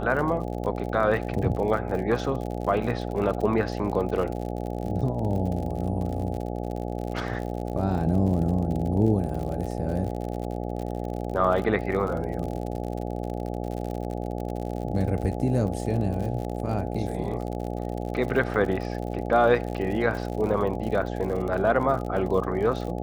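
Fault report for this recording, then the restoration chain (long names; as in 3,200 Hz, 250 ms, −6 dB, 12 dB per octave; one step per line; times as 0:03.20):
mains buzz 60 Hz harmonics 14 −31 dBFS
surface crackle 59 per second −32 dBFS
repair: click removal
hum removal 60 Hz, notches 14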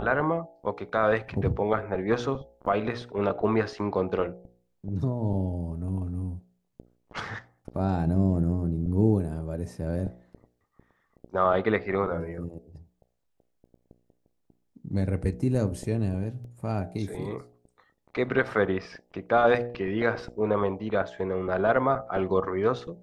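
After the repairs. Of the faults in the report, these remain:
none of them is left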